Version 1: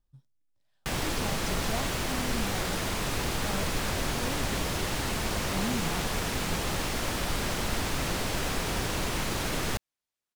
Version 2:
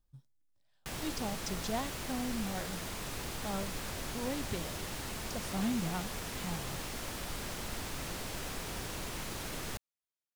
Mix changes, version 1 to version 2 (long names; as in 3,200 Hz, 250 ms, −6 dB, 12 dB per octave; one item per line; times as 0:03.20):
background −10.5 dB
master: add high-shelf EQ 7,000 Hz +5.5 dB